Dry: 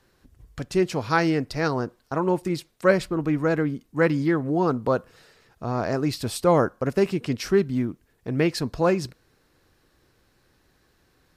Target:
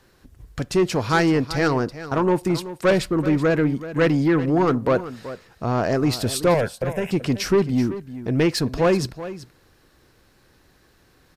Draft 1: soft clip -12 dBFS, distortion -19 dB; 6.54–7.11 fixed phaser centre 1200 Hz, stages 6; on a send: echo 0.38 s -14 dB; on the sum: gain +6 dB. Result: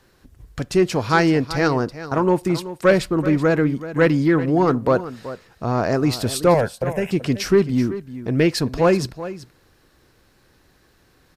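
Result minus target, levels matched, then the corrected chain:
soft clip: distortion -7 dB
soft clip -18 dBFS, distortion -12 dB; 6.54–7.11 fixed phaser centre 1200 Hz, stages 6; on a send: echo 0.38 s -14 dB; on the sum: gain +6 dB

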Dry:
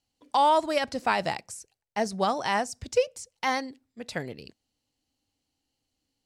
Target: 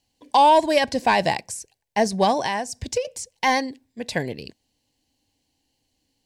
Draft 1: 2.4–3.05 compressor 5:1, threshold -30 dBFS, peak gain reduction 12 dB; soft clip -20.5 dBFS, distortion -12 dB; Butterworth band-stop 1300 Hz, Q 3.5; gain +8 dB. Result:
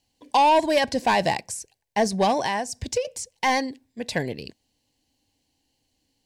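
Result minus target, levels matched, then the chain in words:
soft clip: distortion +10 dB
2.4–3.05 compressor 5:1, threshold -30 dBFS, peak gain reduction 12 dB; soft clip -13.5 dBFS, distortion -22 dB; Butterworth band-stop 1300 Hz, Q 3.5; gain +8 dB

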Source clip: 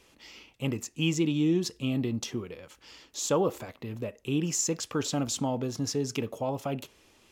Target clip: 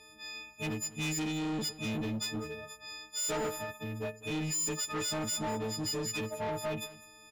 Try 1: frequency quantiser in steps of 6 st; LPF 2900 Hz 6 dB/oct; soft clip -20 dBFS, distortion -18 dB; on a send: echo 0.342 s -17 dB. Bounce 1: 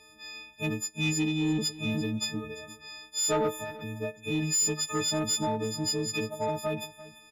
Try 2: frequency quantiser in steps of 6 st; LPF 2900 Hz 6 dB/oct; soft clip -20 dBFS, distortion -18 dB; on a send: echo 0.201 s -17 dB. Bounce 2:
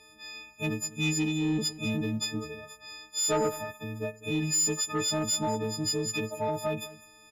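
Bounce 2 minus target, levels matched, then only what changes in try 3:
soft clip: distortion -10 dB
change: soft clip -31 dBFS, distortion -7 dB

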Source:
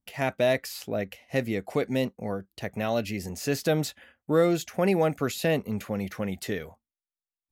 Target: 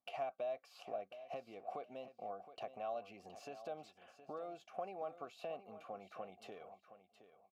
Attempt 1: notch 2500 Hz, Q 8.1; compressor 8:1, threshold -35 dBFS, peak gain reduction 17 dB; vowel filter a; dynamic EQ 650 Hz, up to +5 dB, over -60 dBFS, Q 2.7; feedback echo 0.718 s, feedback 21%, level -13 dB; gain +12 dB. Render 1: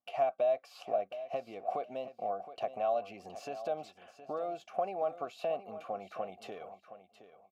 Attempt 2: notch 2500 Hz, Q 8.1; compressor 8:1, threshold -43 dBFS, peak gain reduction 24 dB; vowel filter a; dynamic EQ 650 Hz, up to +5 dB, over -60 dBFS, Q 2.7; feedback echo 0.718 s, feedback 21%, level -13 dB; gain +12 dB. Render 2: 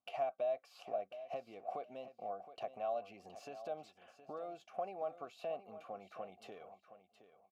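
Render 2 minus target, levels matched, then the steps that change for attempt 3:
250 Hz band -3.5 dB
change: dynamic EQ 230 Hz, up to +5 dB, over -60 dBFS, Q 2.7

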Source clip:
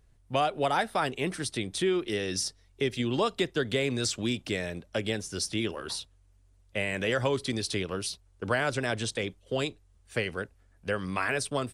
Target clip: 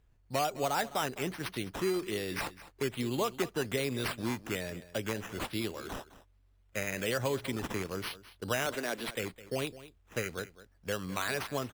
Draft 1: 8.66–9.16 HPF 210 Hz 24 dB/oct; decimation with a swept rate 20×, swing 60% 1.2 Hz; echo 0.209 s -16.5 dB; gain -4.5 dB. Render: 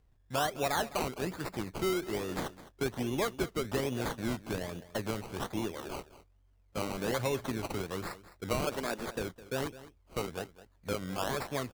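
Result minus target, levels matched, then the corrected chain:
decimation with a swept rate: distortion +6 dB
8.66–9.16 HPF 210 Hz 24 dB/oct; decimation with a swept rate 8×, swing 60% 1.2 Hz; echo 0.209 s -16.5 dB; gain -4.5 dB

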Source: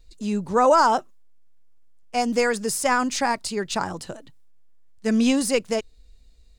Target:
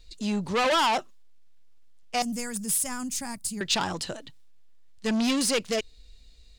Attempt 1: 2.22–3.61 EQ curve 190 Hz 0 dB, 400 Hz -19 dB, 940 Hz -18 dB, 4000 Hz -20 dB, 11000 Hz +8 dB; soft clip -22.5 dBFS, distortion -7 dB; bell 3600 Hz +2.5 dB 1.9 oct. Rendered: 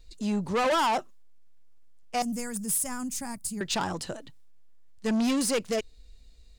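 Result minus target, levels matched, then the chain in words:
4000 Hz band -4.0 dB
2.22–3.61 EQ curve 190 Hz 0 dB, 400 Hz -19 dB, 940 Hz -18 dB, 4000 Hz -20 dB, 11000 Hz +8 dB; soft clip -22.5 dBFS, distortion -7 dB; bell 3600 Hz +9 dB 1.9 oct

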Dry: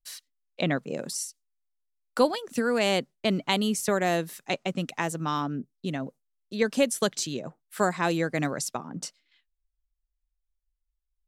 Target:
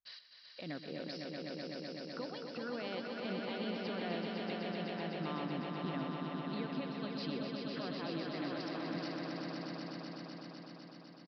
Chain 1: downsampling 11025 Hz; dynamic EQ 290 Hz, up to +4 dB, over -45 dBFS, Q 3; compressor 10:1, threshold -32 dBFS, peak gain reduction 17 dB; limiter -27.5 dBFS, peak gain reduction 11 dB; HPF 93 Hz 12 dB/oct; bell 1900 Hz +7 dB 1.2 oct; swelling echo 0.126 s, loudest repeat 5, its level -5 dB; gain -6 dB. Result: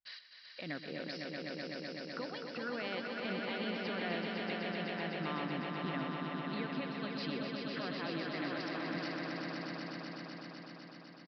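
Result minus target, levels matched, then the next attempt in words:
2000 Hz band +4.5 dB
downsampling 11025 Hz; dynamic EQ 290 Hz, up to +4 dB, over -45 dBFS, Q 3; compressor 10:1, threshold -32 dBFS, peak gain reduction 17 dB; limiter -27.5 dBFS, peak gain reduction 11 dB; HPF 93 Hz 12 dB/oct; swelling echo 0.126 s, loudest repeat 5, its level -5 dB; gain -6 dB

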